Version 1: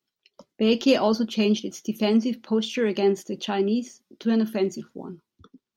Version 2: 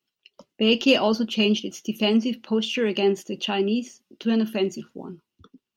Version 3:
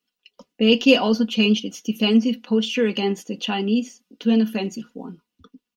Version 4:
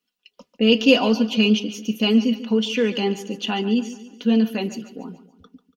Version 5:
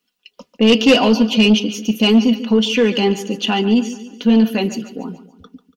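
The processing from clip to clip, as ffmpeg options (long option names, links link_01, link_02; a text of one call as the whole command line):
ffmpeg -i in.wav -af "equalizer=frequency=2800:width=6.4:gain=11" out.wav
ffmpeg -i in.wav -af "aecho=1:1:4.1:0.69" out.wav
ffmpeg -i in.wav -af "aecho=1:1:143|286|429|572:0.188|0.0848|0.0381|0.0172" out.wav
ffmpeg -i in.wav -af "asoftclip=type=tanh:threshold=-11.5dB,volume=7dB" out.wav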